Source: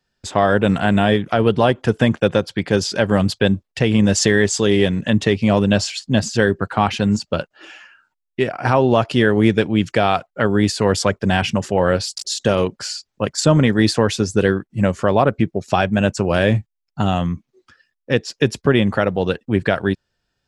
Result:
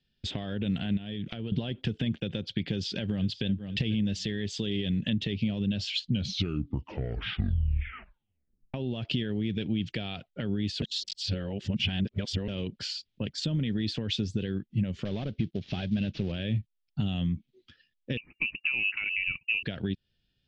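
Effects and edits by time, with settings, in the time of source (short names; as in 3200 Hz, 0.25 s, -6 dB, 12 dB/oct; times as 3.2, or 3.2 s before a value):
0.97–1.52 compressor 20:1, threshold -26 dBFS
2.68–3.46 echo throw 0.49 s, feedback 20%, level -18 dB
5.89 tape stop 2.85 s
10.82–12.48 reverse
15.05–16.32 CVSD 32 kbps
18.17–19.63 inverted band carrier 2800 Hz
whole clip: limiter -10.5 dBFS; compressor, threshold -24 dBFS; EQ curve 220 Hz 0 dB, 1100 Hz -20 dB, 3300 Hz +4 dB, 11000 Hz -30 dB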